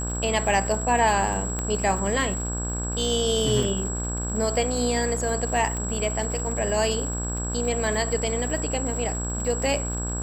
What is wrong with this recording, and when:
buzz 60 Hz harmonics 28 -30 dBFS
crackle 120/s -33 dBFS
tone 7700 Hz -31 dBFS
1.59 pop -15 dBFS
3.63 gap 2.5 ms
5.77 pop -19 dBFS

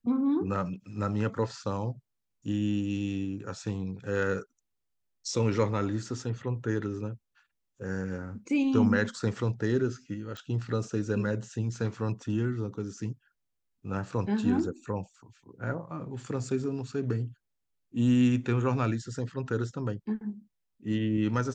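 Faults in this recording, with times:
10.37 pop -26 dBFS

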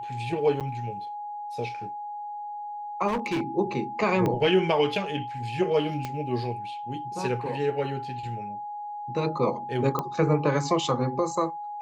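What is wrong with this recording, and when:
tone 830 Hz -33 dBFS
0.6–0.61 gap 7.8 ms
3.07–3.42 clipped -23.5 dBFS
4.26 pop -15 dBFS
6.05 pop -17 dBFS
9.99 pop -14 dBFS

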